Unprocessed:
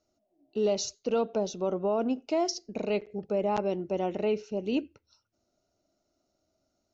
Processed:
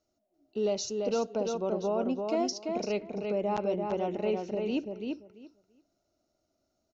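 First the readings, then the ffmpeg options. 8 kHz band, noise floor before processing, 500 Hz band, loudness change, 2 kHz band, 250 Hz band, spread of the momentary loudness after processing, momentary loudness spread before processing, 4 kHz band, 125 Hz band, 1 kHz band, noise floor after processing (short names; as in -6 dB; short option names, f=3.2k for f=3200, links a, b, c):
n/a, -79 dBFS, -1.0 dB, -1.5 dB, -1.5 dB, -1.0 dB, 4 LU, 4 LU, -2.0 dB, -1.0 dB, -1.0 dB, -79 dBFS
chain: -filter_complex "[0:a]asplit=2[a][b];[b]adelay=340,lowpass=f=4k:p=1,volume=-4dB,asplit=2[c][d];[d]adelay=340,lowpass=f=4k:p=1,volume=0.17,asplit=2[e][f];[f]adelay=340,lowpass=f=4k:p=1,volume=0.17[g];[a][c][e][g]amix=inputs=4:normalize=0,volume=-2.5dB"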